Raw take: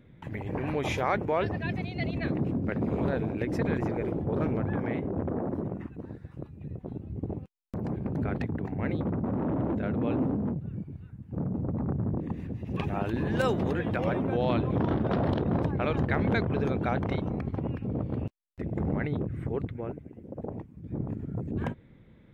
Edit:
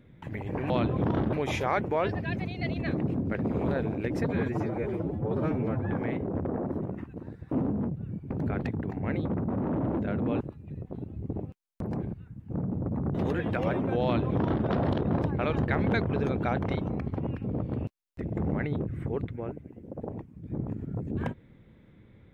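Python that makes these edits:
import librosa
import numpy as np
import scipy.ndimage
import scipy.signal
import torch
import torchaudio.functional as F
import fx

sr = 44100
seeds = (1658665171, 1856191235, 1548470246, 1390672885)

y = fx.edit(x, sr, fx.stretch_span(start_s=3.62, length_s=1.09, factor=1.5),
    fx.swap(start_s=6.34, length_s=1.72, other_s=10.16, other_length_s=0.79),
    fx.cut(start_s=11.97, length_s=1.58),
    fx.duplicate(start_s=14.44, length_s=0.63, to_s=0.7), tone=tone)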